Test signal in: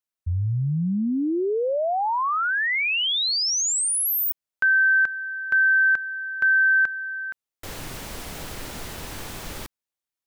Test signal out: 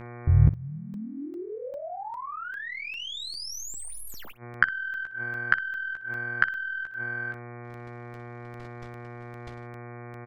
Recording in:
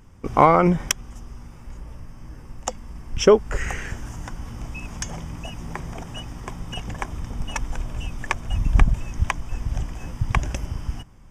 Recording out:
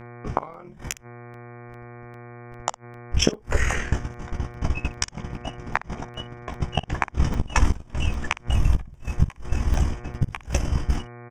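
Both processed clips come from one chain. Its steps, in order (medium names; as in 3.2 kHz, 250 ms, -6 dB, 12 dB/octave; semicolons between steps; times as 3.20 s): tracing distortion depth 0.023 ms; level-controlled noise filter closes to 3 kHz, open at -19 dBFS; gate -29 dBFS, range -47 dB; level rider gain up to 14 dB; AM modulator 40 Hz, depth 70%; mains buzz 120 Hz, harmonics 20, -46 dBFS -5 dB/octave; inverted gate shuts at -11 dBFS, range -29 dB; on a send: early reflections 14 ms -6.5 dB, 60 ms -16 dB; on the sum: crackling interface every 0.40 s, samples 64, zero, from 0.54 s; trim +5 dB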